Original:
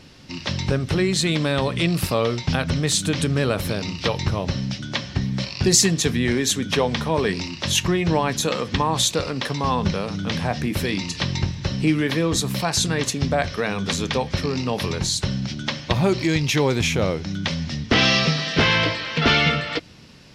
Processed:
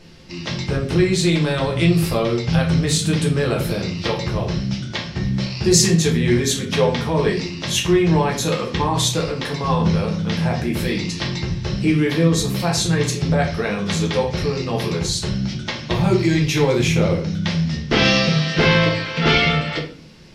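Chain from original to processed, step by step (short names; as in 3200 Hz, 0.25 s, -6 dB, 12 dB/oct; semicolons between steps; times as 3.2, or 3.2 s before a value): shoebox room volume 38 m³, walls mixed, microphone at 0.73 m; gain -3 dB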